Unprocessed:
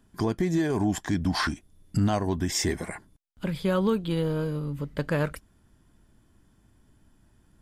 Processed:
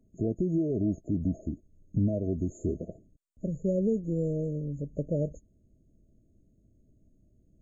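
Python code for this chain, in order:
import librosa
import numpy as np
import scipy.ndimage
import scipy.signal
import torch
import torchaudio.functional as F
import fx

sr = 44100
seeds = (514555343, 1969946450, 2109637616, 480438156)

y = fx.freq_compress(x, sr, knee_hz=1700.0, ratio=1.5)
y = fx.brickwall_bandstop(y, sr, low_hz=680.0, high_hz=6400.0)
y = y * 10.0 ** (-2.5 / 20.0)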